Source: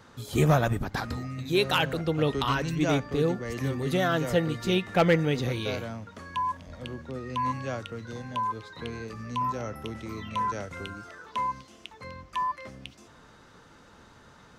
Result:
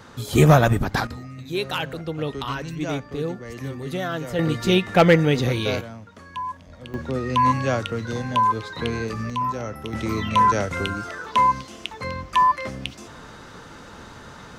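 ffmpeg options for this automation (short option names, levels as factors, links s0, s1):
-af "asetnsamples=n=441:p=0,asendcmd='1.07 volume volume -2dB;4.39 volume volume 7dB;5.81 volume volume -1dB;6.94 volume volume 10.5dB;9.3 volume volume 4dB;9.93 volume volume 12dB',volume=2.51"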